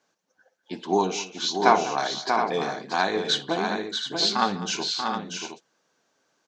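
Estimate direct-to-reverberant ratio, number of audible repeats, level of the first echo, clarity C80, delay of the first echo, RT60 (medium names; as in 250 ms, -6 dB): no reverb, 4, -19.5 dB, no reverb, 58 ms, no reverb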